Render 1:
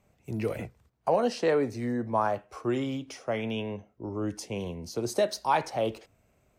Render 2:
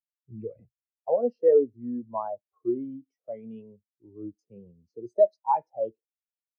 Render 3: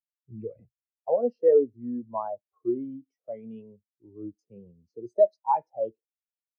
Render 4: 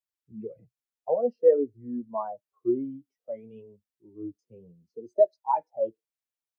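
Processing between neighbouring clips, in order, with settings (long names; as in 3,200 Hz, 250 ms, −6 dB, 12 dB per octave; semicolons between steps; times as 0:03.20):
every bin expanded away from the loudest bin 2.5 to 1; level +2.5 dB
no processing that can be heard
flanger 0.56 Hz, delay 1.8 ms, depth 6.5 ms, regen −11%; level +3 dB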